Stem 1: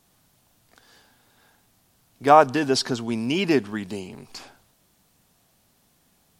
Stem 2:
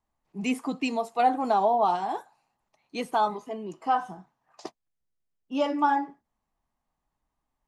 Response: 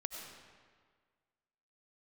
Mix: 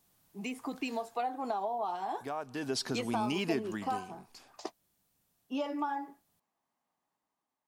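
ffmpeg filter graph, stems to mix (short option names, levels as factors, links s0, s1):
-filter_complex "[0:a]highshelf=f=11000:g=9.5,acompressor=threshold=0.0708:ratio=3,volume=0.841,afade=t=out:st=0.93:d=0.33:silence=0.298538,afade=t=in:st=2.31:d=0.52:silence=0.375837,afade=t=out:st=3.65:d=0.49:silence=0.375837[s0];[1:a]highpass=230,acompressor=threshold=0.0251:ratio=6,volume=0.562[s1];[s0][s1]amix=inputs=2:normalize=0,dynaudnorm=f=170:g=7:m=1.78"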